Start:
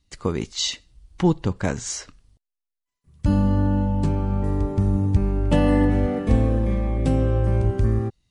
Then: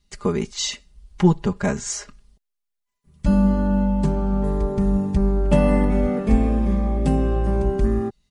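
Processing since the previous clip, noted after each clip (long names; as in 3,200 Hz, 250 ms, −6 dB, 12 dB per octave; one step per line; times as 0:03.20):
comb filter 4.9 ms, depth 86%
dynamic equaliser 3,800 Hz, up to −5 dB, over −44 dBFS, Q 1.5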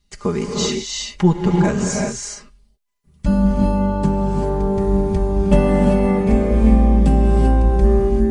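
reverb whose tail is shaped and stops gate 410 ms rising, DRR 0 dB
level +1 dB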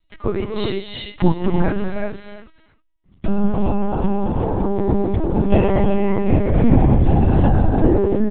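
single-tap delay 315 ms −15.5 dB
linear-prediction vocoder at 8 kHz pitch kept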